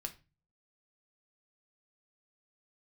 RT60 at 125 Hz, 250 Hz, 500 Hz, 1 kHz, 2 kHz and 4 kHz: 0.65 s, 0.45 s, 0.30 s, 0.30 s, 0.30 s, 0.25 s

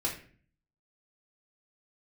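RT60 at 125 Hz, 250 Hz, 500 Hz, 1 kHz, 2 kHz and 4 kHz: 0.80 s, 0.70 s, 0.50 s, 0.40 s, 0.50 s, 0.35 s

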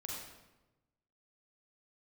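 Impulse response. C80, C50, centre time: 2.0 dB, -1.0 dB, 73 ms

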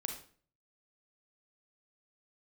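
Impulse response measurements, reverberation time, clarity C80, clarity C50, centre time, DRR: 0.45 s, 11.0 dB, 6.0 dB, 22 ms, 3.0 dB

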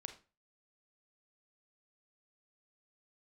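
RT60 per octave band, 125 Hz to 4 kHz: 0.45 s, 0.35 s, 0.35 s, 0.35 s, 0.30 s, 0.25 s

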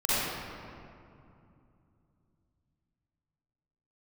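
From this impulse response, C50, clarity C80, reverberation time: -8.5 dB, -4.0 dB, 2.6 s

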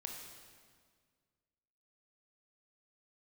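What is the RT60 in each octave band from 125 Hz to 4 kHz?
2.2 s, 2.1 s, 1.9 s, 1.7 s, 1.6 s, 1.5 s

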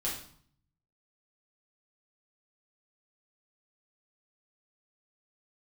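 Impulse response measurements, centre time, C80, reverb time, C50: 37 ms, 9.0 dB, 0.55 s, 5.0 dB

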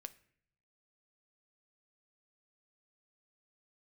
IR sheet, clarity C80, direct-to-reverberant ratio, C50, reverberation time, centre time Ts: 21.5 dB, 10.5 dB, 18.0 dB, no single decay rate, 3 ms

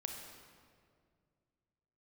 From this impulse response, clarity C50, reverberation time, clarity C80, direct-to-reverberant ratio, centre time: 3.5 dB, 2.1 s, 4.5 dB, 2.5 dB, 60 ms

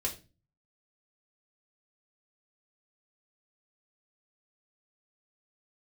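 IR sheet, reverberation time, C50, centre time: 0.30 s, 12.5 dB, 14 ms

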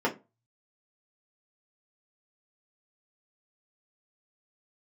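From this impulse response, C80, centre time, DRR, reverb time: 24.0 dB, 12 ms, -4.5 dB, 0.25 s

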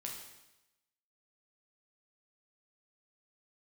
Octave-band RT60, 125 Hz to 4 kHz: 0.95 s, 0.95 s, 0.95 s, 0.95 s, 0.95 s, 0.95 s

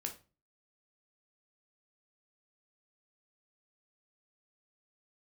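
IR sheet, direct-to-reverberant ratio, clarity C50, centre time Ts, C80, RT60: 3.0 dB, 11.5 dB, 13 ms, 18.0 dB, 0.35 s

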